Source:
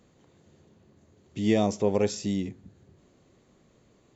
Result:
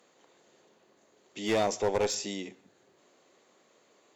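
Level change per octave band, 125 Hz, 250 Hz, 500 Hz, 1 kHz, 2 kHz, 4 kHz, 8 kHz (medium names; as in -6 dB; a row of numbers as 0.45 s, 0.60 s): -11.0 dB, -9.5 dB, -2.5 dB, +1.5 dB, +2.0 dB, +2.5 dB, no reading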